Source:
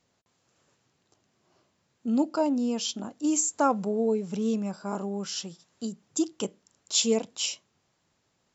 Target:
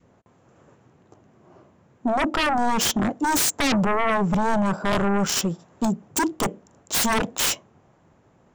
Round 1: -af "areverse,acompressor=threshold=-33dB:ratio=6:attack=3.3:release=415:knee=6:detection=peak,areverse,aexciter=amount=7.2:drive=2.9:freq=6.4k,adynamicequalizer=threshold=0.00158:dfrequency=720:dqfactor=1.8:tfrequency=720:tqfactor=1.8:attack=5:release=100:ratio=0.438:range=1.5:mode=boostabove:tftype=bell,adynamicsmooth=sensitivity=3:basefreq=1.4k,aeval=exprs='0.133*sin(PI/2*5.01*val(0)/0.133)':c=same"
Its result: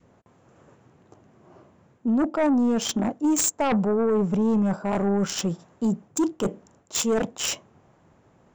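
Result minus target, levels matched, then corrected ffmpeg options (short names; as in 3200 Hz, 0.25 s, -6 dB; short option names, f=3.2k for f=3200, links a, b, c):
compressor: peak gain reduction +8.5 dB
-af "areverse,acompressor=threshold=-22.5dB:ratio=6:attack=3.3:release=415:knee=6:detection=peak,areverse,aexciter=amount=7.2:drive=2.9:freq=6.4k,adynamicequalizer=threshold=0.00158:dfrequency=720:dqfactor=1.8:tfrequency=720:tqfactor=1.8:attack=5:release=100:ratio=0.438:range=1.5:mode=boostabove:tftype=bell,adynamicsmooth=sensitivity=3:basefreq=1.4k,aeval=exprs='0.133*sin(PI/2*5.01*val(0)/0.133)':c=same"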